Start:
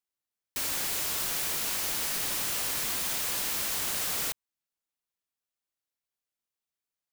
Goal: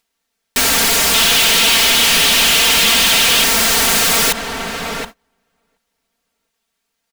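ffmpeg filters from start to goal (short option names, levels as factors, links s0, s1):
-filter_complex "[0:a]acompressor=mode=upward:threshold=0.00355:ratio=2.5,aecho=1:1:4.4:0.98,asplit=2[s0][s1];[s1]adelay=724,lowpass=f=1700:p=1,volume=0.211,asplit=2[s2][s3];[s3]adelay=724,lowpass=f=1700:p=1,volume=0.32,asplit=2[s4][s5];[s5]adelay=724,lowpass=f=1700:p=1,volume=0.32[s6];[s0][s2][s4][s6]amix=inputs=4:normalize=0,agate=range=0.0251:threshold=0.00178:ratio=16:detection=peak,highshelf=f=8500:g=-9.5,bandreject=f=1100:w=28,asettb=1/sr,asplit=3[s7][s8][s9];[s7]atrim=end=1.144[s10];[s8]atrim=start=1.14:end=3.44,asetpts=PTS-STARTPTS,afade=t=in:d=0.004:c=qsin,afade=t=out:st=2.296:d=0.004:c=qsin,equalizer=f=3100:w=1.4:g=9.5[s11];[s9]atrim=start=3.436[s12];[s10][s11]acrossfade=d=0.004:c1=hsin:c2=qsin[s13];[s13][s12]acrossfade=d=0.004:c1=qsin:c2=hsin,asoftclip=type=tanh:threshold=0.0282,alimiter=level_in=63.1:limit=0.891:release=50:level=0:latency=1,volume=0.398"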